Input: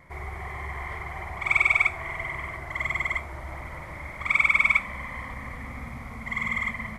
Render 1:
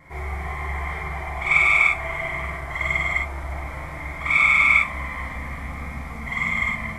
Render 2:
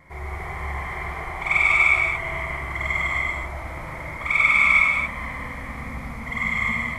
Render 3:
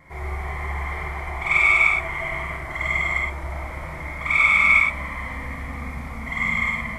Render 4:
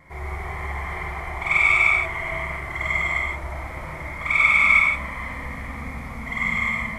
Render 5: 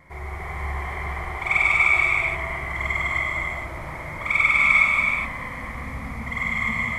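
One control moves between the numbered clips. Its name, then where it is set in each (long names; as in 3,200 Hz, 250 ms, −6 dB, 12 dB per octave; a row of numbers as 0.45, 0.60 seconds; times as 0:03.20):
reverb whose tail is shaped and stops, gate: 80, 310, 140, 200, 500 milliseconds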